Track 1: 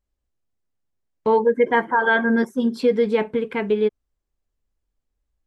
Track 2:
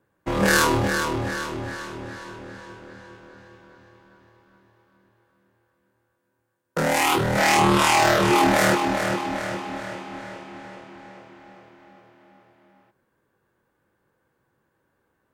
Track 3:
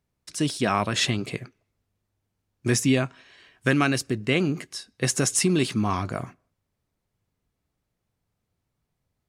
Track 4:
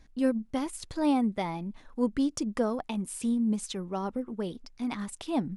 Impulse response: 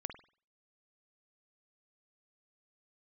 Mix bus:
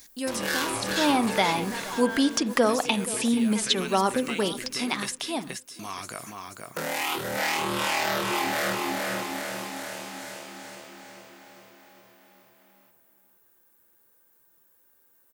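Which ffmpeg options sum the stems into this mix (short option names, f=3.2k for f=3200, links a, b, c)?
-filter_complex "[0:a]alimiter=limit=-18dB:level=0:latency=1,volume=-10dB[a];[1:a]tiltshelf=f=650:g=4,volume=-3dB,asplit=2[b][c];[c]volume=-9dB[d];[2:a]acompressor=threshold=-29dB:ratio=6,volume=1.5dB,asplit=3[e][f][g];[e]atrim=end=5.13,asetpts=PTS-STARTPTS,afade=t=out:st=5.126:d=0.004:c=hsin[h];[f]atrim=start=5.13:end=5.79,asetpts=PTS-STARTPTS,volume=0[i];[g]atrim=start=5.79,asetpts=PTS-STARTPTS,afade=t=in:d=0.004:c=hsin[j];[h][i][j]concat=n=3:v=0:a=1,asplit=2[k][l];[l]volume=-5.5dB[m];[3:a]dynaudnorm=f=190:g=11:m=14.5dB,volume=2.5dB,asplit=3[n][o][p];[o]volume=-12dB[q];[p]volume=-22dB[r];[b][k][n]amix=inputs=3:normalize=0,highshelf=f=3.1k:g=10.5,acompressor=threshold=-35dB:ratio=1.5,volume=0dB[s];[4:a]atrim=start_sample=2205[t];[q][t]afir=irnorm=-1:irlink=0[u];[d][m][r]amix=inputs=3:normalize=0,aecho=0:1:476|952|1428|1904:1|0.28|0.0784|0.022[v];[a][s][u][v]amix=inputs=4:normalize=0,acrossover=split=3900[w][x];[x]acompressor=threshold=-51dB:ratio=4:attack=1:release=60[y];[w][y]amix=inputs=2:normalize=0,aemphasis=mode=production:type=riaa"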